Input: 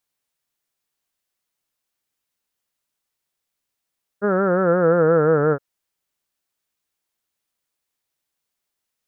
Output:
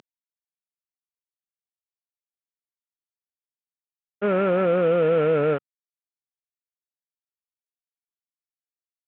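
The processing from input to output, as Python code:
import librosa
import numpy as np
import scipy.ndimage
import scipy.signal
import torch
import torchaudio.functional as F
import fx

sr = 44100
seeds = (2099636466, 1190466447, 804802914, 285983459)

y = fx.cvsd(x, sr, bps=16000)
y = scipy.signal.sosfilt(scipy.signal.butter(2, 190.0, 'highpass', fs=sr, output='sos'), y)
y = fx.air_absorb(y, sr, metres=120.0)
y = fx.env_flatten(y, sr, amount_pct=50)
y = y * librosa.db_to_amplitude(-1.5)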